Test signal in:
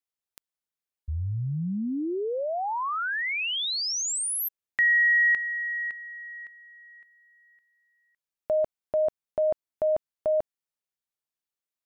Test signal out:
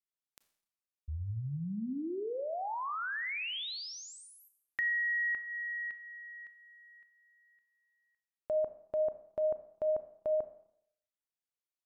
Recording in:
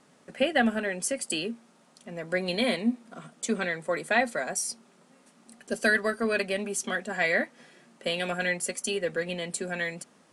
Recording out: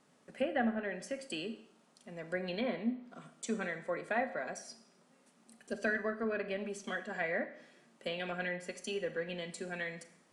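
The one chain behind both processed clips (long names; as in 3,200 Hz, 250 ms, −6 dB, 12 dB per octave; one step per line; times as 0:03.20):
treble cut that deepens with the level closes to 1,700 Hz, closed at −23 dBFS
four-comb reverb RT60 0.7 s, combs from 28 ms, DRR 10.5 dB
level −8 dB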